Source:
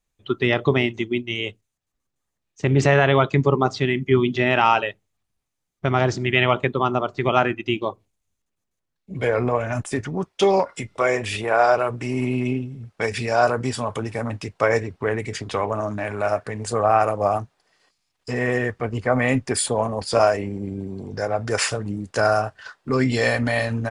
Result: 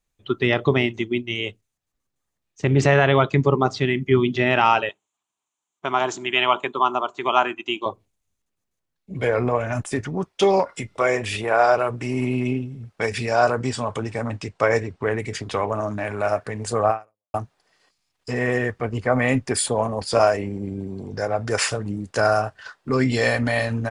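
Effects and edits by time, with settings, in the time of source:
4.89–7.86 speaker cabinet 380–9200 Hz, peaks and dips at 510 Hz -9 dB, 1000 Hz +8 dB, 1900 Hz -6 dB, 3100 Hz +4 dB, 4900 Hz -9 dB, 7100 Hz +9 dB
13.3–15.15 brick-wall FIR low-pass 9500 Hz
16.9–17.34 fade out exponential

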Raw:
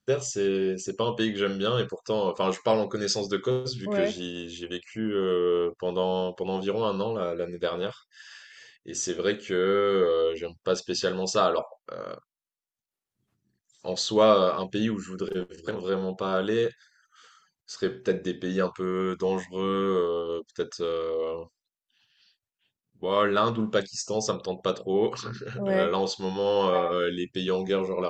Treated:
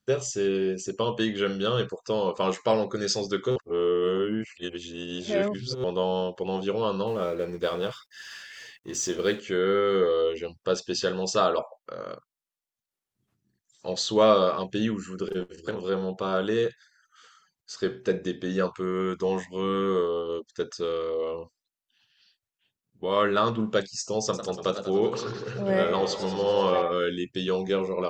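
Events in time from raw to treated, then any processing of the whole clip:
3.56–5.84 reverse
7.07–9.4 G.711 law mismatch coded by mu
24.23–26.82 warbling echo 98 ms, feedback 71%, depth 135 cents, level -10.5 dB

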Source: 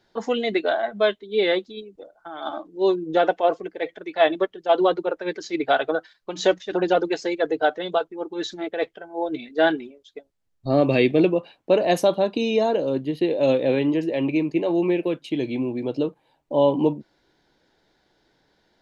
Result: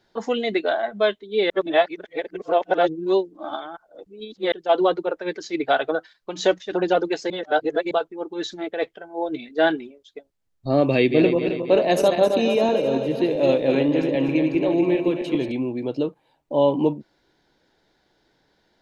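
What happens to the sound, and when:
1.5–4.52 reverse
7.3–7.91 reverse
10.96–15.52 regenerating reverse delay 0.133 s, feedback 71%, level -7 dB

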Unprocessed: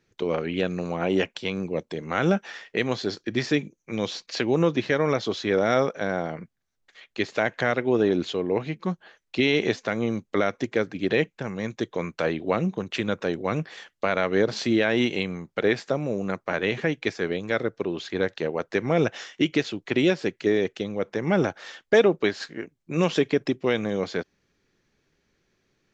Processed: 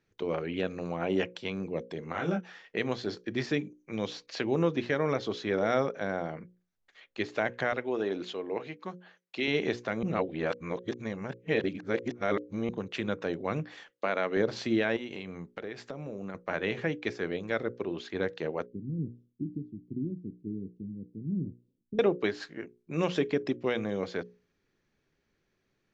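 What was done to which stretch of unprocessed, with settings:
2.12–2.64 detuned doubles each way 31 cents
7.72–9.48 HPF 460 Hz 6 dB/oct
10.03–12.69 reverse
13.9–14.37 HPF 190 Hz
14.96–16.35 compressor 10:1, threshold -28 dBFS
18.66–21.99 inverse Chebyshev low-pass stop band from 670 Hz, stop band 50 dB
whole clip: high shelf 4500 Hz -7 dB; notches 60/120/180/240/300/360/420/480/540 Hz; gain -5 dB

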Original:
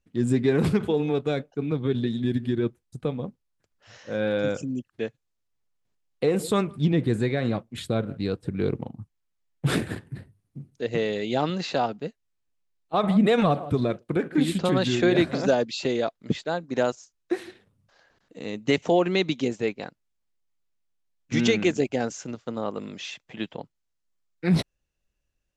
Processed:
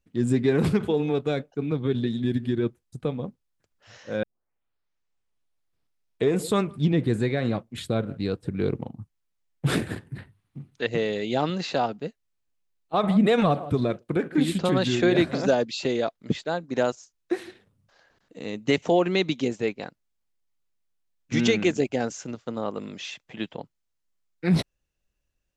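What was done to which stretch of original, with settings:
4.23 tape start 2.23 s
10.18–10.87 band shelf 1800 Hz +9.5 dB 2.6 oct

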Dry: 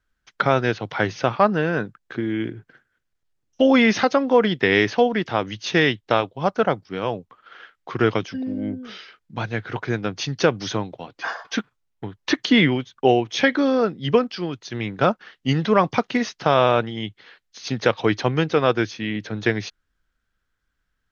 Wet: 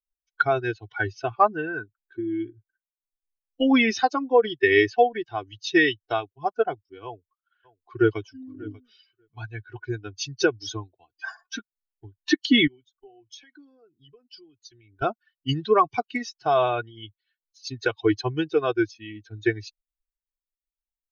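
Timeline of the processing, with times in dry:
7.05–8.2 echo throw 0.59 s, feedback 25%, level -11 dB
12.67–15.02 compressor, threshold -32 dBFS
whole clip: per-bin expansion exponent 2; comb 2.7 ms, depth 87%

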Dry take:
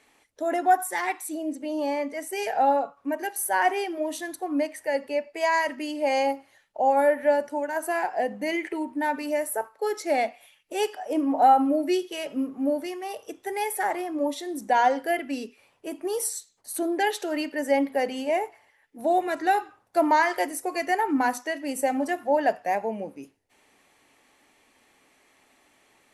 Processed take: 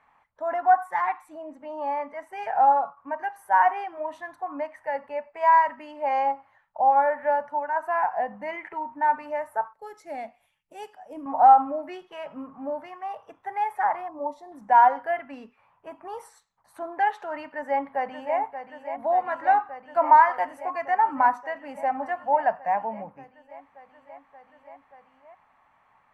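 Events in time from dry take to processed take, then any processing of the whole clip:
9.73–11.26 EQ curve 300 Hz 0 dB, 1100 Hz -16 dB, 8700 Hz +8 dB
14.08–14.52 band shelf 2100 Hz -15 dB
17.5–18.38 echo throw 0.58 s, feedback 85%, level -9.5 dB
whole clip: EQ curve 170 Hz 0 dB, 350 Hz -17 dB, 1000 Hz +9 dB, 4400 Hz -20 dB, 10000 Hz -27 dB

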